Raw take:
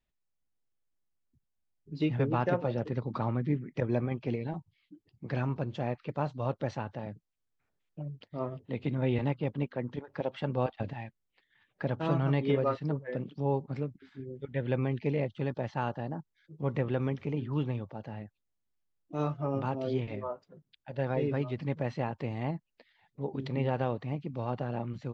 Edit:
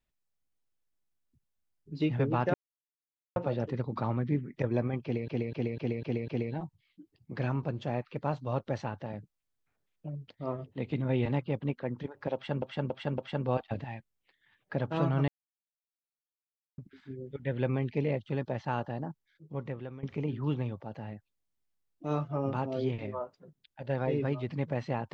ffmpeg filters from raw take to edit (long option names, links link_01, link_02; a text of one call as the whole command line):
ffmpeg -i in.wav -filter_complex "[0:a]asplit=13[link_01][link_02][link_03][link_04][link_05][link_06][link_07][link_08][link_09][link_10][link_11][link_12][link_13];[link_01]atrim=end=2.54,asetpts=PTS-STARTPTS,afade=type=out:start_time=2.536:duration=0.004:curve=hsin,apad=pad_dur=0.82[link_14];[link_02]atrim=start=2.54:end=4.462,asetpts=PTS-STARTPTS,afade=type=in:duration=0.004:curve=hsin[link_15];[link_03]atrim=start=4.208:end=4.462[link_16];[link_04]atrim=start=4.208:end=4.462[link_17];[link_05]atrim=start=4.208:end=4.462[link_18];[link_06]atrim=start=4.208:end=4.462[link_19];[link_07]atrim=start=4.208:end=10.552[link_20];[link_08]atrim=start=10.268:end=10.552[link_21];[link_09]atrim=start=10.268:end=10.552[link_22];[link_10]atrim=start=10.268:end=12.37,asetpts=PTS-STARTPTS,afade=type=out:start_time=2.098:duration=0.004:curve=hsin[link_23];[link_11]atrim=start=12.37:end=13.87,asetpts=PTS-STARTPTS,volume=0[link_24];[link_12]atrim=start=13.87:end=17.12,asetpts=PTS-STARTPTS,afade=type=in:duration=0.004:curve=hsin,afade=type=out:start_time=2.28:duration=0.97:silence=0.133352[link_25];[link_13]atrim=start=17.12,asetpts=PTS-STARTPTS,afade=type=in:duration=0.004:curve=hsin:silence=0.133352[link_26];[link_14][link_15]concat=n=2:v=0:a=1[link_27];[link_27][link_16]acrossfade=duration=0.004:curve1=hsin:curve2=hsin[link_28];[link_28][link_17]acrossfade=duration=0.004:curve1=hsin:curve2=hsin[link_29];[link_29][link_18]acrossfade=duration=0.004:curve1=hsin:curve2=hsin[link_30];[link_30][link_19]acrossfade=duration=0.004:curve1=hsin:curve2=hsin[link_31];[link_31][link_20]acrossfade=duration=0.004:curve1=hsin:curve2=hsin[link_32];[link_32][link_21]acrossfade=duration=0.004:curve1=hsin:curve2=hsin[link_33];[link_33][link_22]acrossfade=duration=0.004:curve1=hsin:curve2=hsin[link_34];[link_23][link_24][link_25][link_26]concat=n=4:v=0:a=1[link_35];[link_34][link_35]acrossfade=duration=0.004:curve1=hsin:curve2=hsin" out.wav